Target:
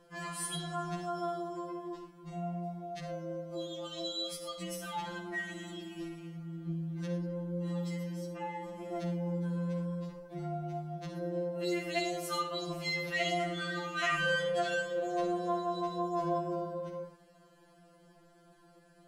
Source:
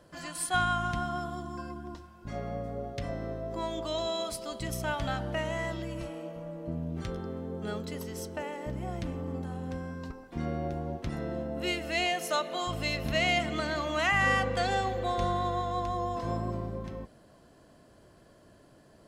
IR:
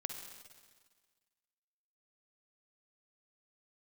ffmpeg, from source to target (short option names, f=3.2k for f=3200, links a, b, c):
-filter_complex "[0:a]asettb=1/sr,asplit=3[a][b][c];[a]atrim=end=7.954[d];[b]atrim=start=7.95:end=8.64,asetpts=PTS-STARTPTS,afade=t=in:d=0.004:c=qsin,afade=t=out:st=0.686:d=0.004:c=qsin,highshelf=f=5.1k:g=-11[e];[c]atrim=start=8.636[f];[d][e]acrossfade=d=0.004:c1=hsin:c2=qsin[g];[g][f]acrossfade=d=0.004:c1=qsin:c2=hsin[h];[1:a]atrim=start_sample=2205,afade=t=out:st=0.17:d=0.01,atrim=end_sample=7938[i];[h][i]afir=irnorm=-1:irlink=0,afftfilt=real='re*2.83*eq(mod(b,8),0)':imag='im*2.83*eq(mod(b,8),0)':win_size=2048:overlap=0.75"